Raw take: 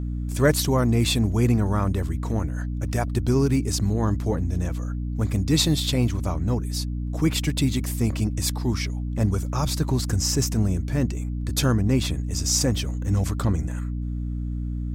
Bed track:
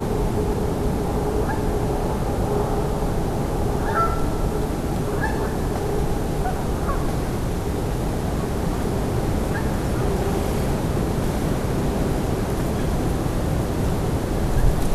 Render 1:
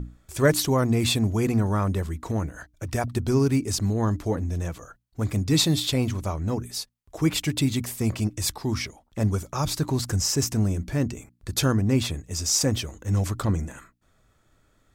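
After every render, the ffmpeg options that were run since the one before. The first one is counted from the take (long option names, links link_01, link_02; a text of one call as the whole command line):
ffmpeg -i in.wav -af "bandreject=frequency=60:width_type=h:width=6,bandreject=frequency=120:width_type=h:width=6,bandreject=frequency=180:width_type=h:width=6,bandreject=frequency=240:width_type=h:width=6,bandreject=frequency=300:width_type=h:width=6" out.wav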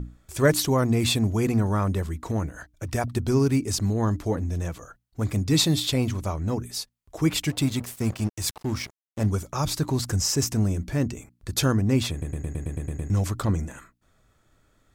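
ffmpeg -i in.wav -filter_complex "[0:a]asettb=1/sr,asplit=3[link_01][link_02][link_03];[link_01]atrim=end=7.504[link_04];[link_02]atrim=start=7.5:end=9.26,asetpts=PTS-STARTPTS,afade=type=in:duration=0.004:curve=qsin,afade=type=out:start_time=1.756:duration=0.004:curve=qsin,aeval=exprs='sgn(val(0))*max(abs(val(0))-0.0112,0)':channel_layout=same[link_05];[link_03]atrim=start=9.256[link_06];[link_04][link_05]acrossfade=duration=0.004:curve1=hsin:curve2=qsin[link_07];[link_07][link_06]acrossfade=duration=0.004:curve1=qsin:curve2=hsin,asplit=10[link_08][link_09][link_10][link_11][link_12][link_13][link_14][link_15][link_16][link_17];[link_08]atrim=end=12.222[link_18];[link_09]atrim=start=12.108:end=12.222[link_19];[link_10]atrim=start=12.108:end=12.222[link_20];[link_11]atrim=start=12.108:end=12.222[link_21];[link_12]atrim=start=12.108:end=12.222[link_22];[link_13]atrim=start=12.108:end=12.222[link_23];[link_14]atrim=start=12.108:end=12.222[link_24];[link_15]atrim=start=12.108:end=12.222[link_25];[link_16]atrim=start=12.108:end=12.222[link_26];[link_17]atrim=start=13.098[link_27];[link_18][link_19]acrossfade=duration=0.004:curve1=hsin:curve2=hsin[link_28];[link_28][link_20]acrossfade=duration=0.004:curve1=hsin:curve2=hsin[link_29];[link_29][link_21]acrossfade=duration=0.004:curve1=hsin:curve2=hsin[link_30];[link_30][link_22]acrossfade=duration=0.004:curve1=hsin:curve2=hsin[link_31];[link_31][link_23]acrossfade=duration=0.004:curve1=hsin:curve2=hsin[link_32];[link_32][link_24]acrossfade=duration=0.004:curve1=hsin:curve2=hsin[link_33];[link_33][link_25]acrossfade=duration=0.004:curve1=hsin:curve2=hsin[link_34];[link_34][link_26]acrossfade=duration=0.004:curve1=hsin:curve2=hsin[link_35];[link_35][link_27]acrossfade=duration=0.004:curve1=hsin:curve2=hsin" out.wav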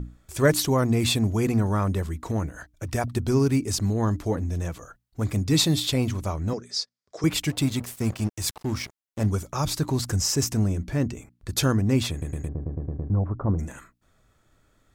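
ffmpeg -i in.wav -filter_complex "[0:a]asettb=1/sr,asplit=3[link_01][link_02][link_03];[link_01]atrim=end=6.534[link_04];[link_02]atrim=start=6.53:end=7.24,asetpts=PTS-STARTPTS,afade=type=in:duration=0.004:curve=qsin,afade=type=out:start_time=0.706:duration=0.004:curve=qsin,highpass=250,equalizer=frequency=290:width_type=q:width=4:gain=-10,equalizer=frequency=490:width_type=q:width=4:gain=3,equalizer=frequency=880:width_type=q:width=4:gain=-9,equalizer=frequency=2800:width_type=q:width=4:gain=-8,equalizer=frequency=5000:width_type=q:width=4:gain=8,lowpass=frequency=7000:width=0.5412,lowpass=frequency=7000:width=1.3066[link_05];[link_03]atrim=start=7.236[link_06];[link_04][link_05]acrossfade=duration=0.004:curve1=hsin:curve2=qsin[link_07];[link_07][link_06]acrossfade=duration=0.004:curve1=qsin:curve2=hsin,asettb=1/sr,asplit=3[link_08][link_09][link_10];[link_08]atrim=end=10.644[link_11];[link_09]atrim=start=10.64:end=11.49,asetpts=PTS-STARTPTS,afade=type=in:duration=0.004:curve=qsin,afade=type=out:start_time=0.846:duration=0.004:curve=qsin,highshelf=frequency=5200:gain=-5[link_12];[link_10]atrim=start=11.486[link_13];[link_11][link_12]acrossfade=duration=0.004:curve1=hsin:curve2=qsin[link_14];[link_14][link_13]acrossfade=duration=0.004:curve1=qsin:curve2=hsin,asplit=3[link_15][link_16][link_17];[link_15]afade=type=out:start_time=12.47:duration=0.02[link_18];[link_16]lowpass=frequency=1100:width=0.5412,lowpass=frequency=1100:width=1.3066,afade=type=in:start_time=12.47:duration=0.02,afade=type=out:start_time=13.58:duration=0.02[link_19];[link_17]afade=type=in:start_time=13.58:duration=0.02[link_20];[link_18][link_19][link_20]amix=inputs=3:normalize=0" out.wav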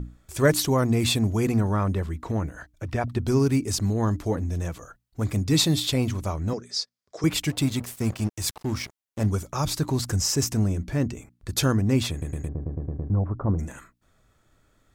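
ffmpeg -i in.wav -filter_complex "[0:a]asettb=1/sr,asplit=3[link_01][link_02][link_03];[link_01]atrim=end=1.614[link_04];[link_02]atrim=start=1.61:end=3.24,asetpts=PTS-STARTPTS,afade=type=in:duration=0.004:curve=qsin,afade=type=out:start_time=1.626:duration=0.004:curve=qsin,acrossover=split=4200[link_05][link_06];[link_06]acompressor=threshold=-57dB:ratio=4:attack=1:release=60[link_07];[link_05][link_07]amix=inputs=2:normalize=0[link_08];[link_03]atrim=start=3.236[link_09];[link_04][link_08]acrossfade=duration=0.004:curve1=hsin:curve2=qsin[link_10];[link_10][link_09]acrossfade=duration=0.004:curve1=qsin:curve2=hsin" out.wav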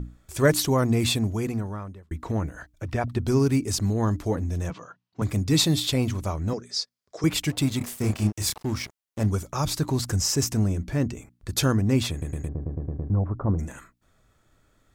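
ffmpeg -i in.wav -filter_complex "[0:a]asettb=1/sr,asplit=3[link_01][link_02][link_03];[link_01]atrim=end=4.704[link_04];[link_02]atrim=start=4.7:end=5.22,asetpts=PTS-STARTPTS,afade=type=in:duration=0.004:curve=qsin,afade=type=out:start_time=0.516:duration=0.004:curve=qsin,highpass=frequency=130:width=0.5412,highpass=frequency=130:width=1.3066,equalizer=frequency=170:width_type=q:width=4:gain=6,equalizer=frequency=1000:width_type=q:width=4:gain=7,equalizer=frequency=2800:width_type=q:width=4:gain=4,lowpass=frequency=5500:width=0.5412,lowpass=frequency=5500:width=1.3066[link_05];[link_03]atrim=start=5.216[link_06];[link_04][link_05]acrossfade=duration=0.004:curve1=hsin:curve2=qsin[link_07];[link_07][link_06]acrossfade=duration=0.004:curve1=qsin:curve2=hsin,asettb=1/sr,asplit=3[link_08][link_09][link_10];[link_08]atrim=end=7.784[link_11];[link_09]atrim=start=7.78:end=8.56,asetpts=PTS-STARTPTS,afade=type=in:duration=0.004:curve=qsin,afade=type=out:start_time=0.776:duration=0.004:curve=qsin,asplit=2[link_12][link_13];[link_13]adelay=29,volume=-3dB[link_14];[link_12][link_14]amix=inputs=2:normalize=0,atrim=end_sample=34398[link_15];[link_10]atrim=start=8.556[link_16];[link_11][link_15]acrossfade=duration=0.004:curve1=hsin:curve2=qsin[link_17];[link_17][link_16]acrossfade=duration=0.004:curve1=qsin:curve2=hsin,asplit=2[link_18][link_19];[link_18]atrim=end=2.11,asetpts=PTS-STARTPTS,afade=type=out:start_time=1.01:duration=1.1[link_20];[link_19]atrim=start=2.11,asetpts=PTS-STARTPTS,afade=type=in:duration=0.004:curve=hsin[link_21];[link_20][link_21]concat=n=2:v=0:a=1" out.wav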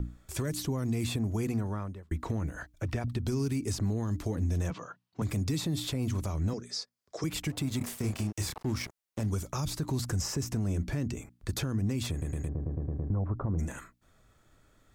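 ffmpeg -i in.wav -filter_complex "[0:a]acrossover=split=330|2200|5400[link_01][link_02][link_03][link_04];[link_01]acompressor=threshold=-23dB:ratio=4[link_05];[link_02]acompressor=threshold=-36dB:ratio=4[link_06];[link_03]acompressor=threshold=-44dB:ratio=4[link_07];[link_04]acompressor=threshold=-40dB:ratio=4[link_08];[link_05][link_06][link_07][link_08]amix=inputs=4:normalize=0,alimiter=limit=-22.5dB:level=0:latency=1:release=100" out.wav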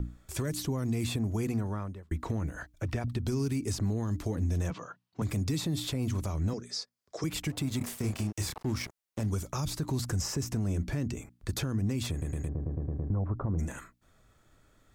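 ffmpeg -i in.wav -af anull out.wav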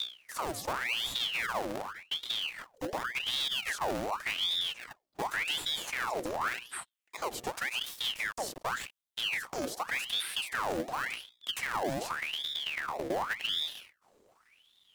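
ffmpeg -i in.wav -filter_complex "[0:a]acrossover=split=2900[link_01][link_02];[link_01]acrusher=samples=36:mix=1:aa=0.000001:lfo=1:lforange=21.6:lforate=1.9[link_03];[link_03][link_02]amix=inputs=2:normalize=0,aeval=exprs='val(0)*sin(2*PI*2000*n/s+2000*0.8/0.88*sin(2*PI*0.88*n/s))':channel_layout=same" out.wav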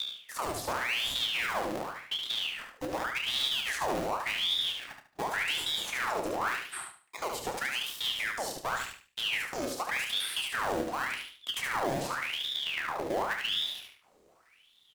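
ffmpeg -i in.wav -filter_complex "[0:a]asplit=2[link_01][link_02];[link_02]adelay=29,volume=-10dB[link_03];[link_01][link_03]amix=inputs=2:normalize=0,aecho=1:1:73|146|219|292:0.562|0.163|0.0473|0.0137" out.wav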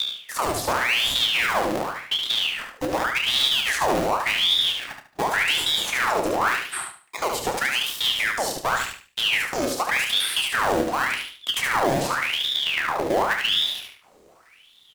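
ffmpeg -i in.wav -af "volume=9.5dB" out.wav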